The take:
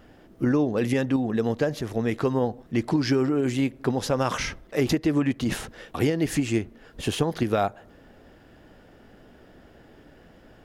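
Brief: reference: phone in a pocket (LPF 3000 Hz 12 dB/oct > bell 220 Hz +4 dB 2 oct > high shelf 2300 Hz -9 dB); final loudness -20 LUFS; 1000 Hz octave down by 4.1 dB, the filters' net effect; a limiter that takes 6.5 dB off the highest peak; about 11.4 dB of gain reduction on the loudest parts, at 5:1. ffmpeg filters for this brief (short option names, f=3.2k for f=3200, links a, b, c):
-af "equalizer=f=1k:t=o:g=-5,acompressor=threshold=-32dB:ratio=5,alimiter=level_in=3dB:limit=-24dB:level=0:latency=1,volume=-3dB,lowpass=3k,equalizer=f=220:t=o:w=2:g=4,highshelf=f=2.3k:g=-9,volume=15dB"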